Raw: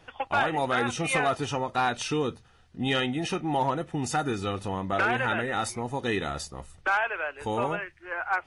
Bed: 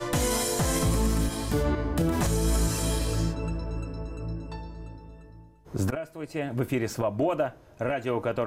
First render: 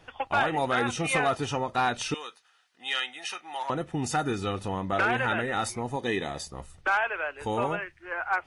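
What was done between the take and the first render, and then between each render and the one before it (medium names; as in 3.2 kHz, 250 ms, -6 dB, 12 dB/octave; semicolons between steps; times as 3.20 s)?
2.14–3.70 s: high-pass 1.2 kHz; 5.96–6.47 s: comb of notches 1.4 kHz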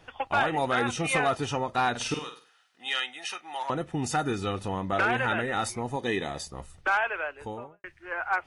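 1.90–2.90 s: flutter echo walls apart 8.5 m, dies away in 0.39 s; 7.15–7.84 s: studio fade out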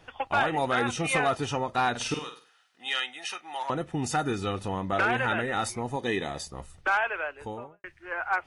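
no audible change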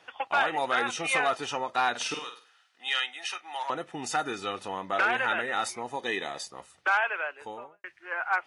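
frequency weighting A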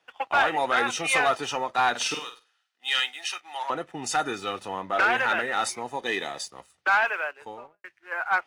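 waveshaping leveller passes 1; three bands expanded up and down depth 40%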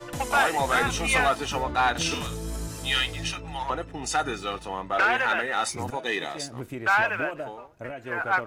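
add bed -8.5 dB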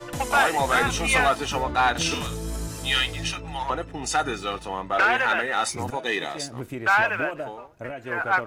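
trim +2 dB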